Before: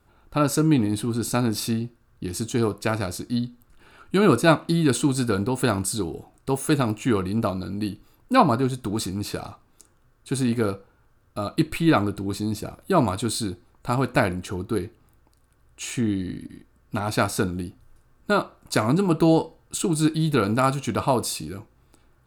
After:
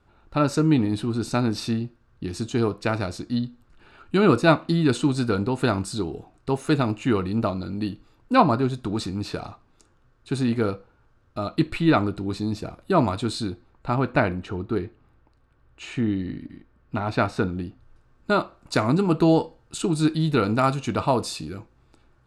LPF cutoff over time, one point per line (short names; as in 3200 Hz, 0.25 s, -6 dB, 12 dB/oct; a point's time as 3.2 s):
13.36 s 5300 Hz
13.97 s 3200 Hz
17.45 s 3200 Hz
18.38 s 6300 Hz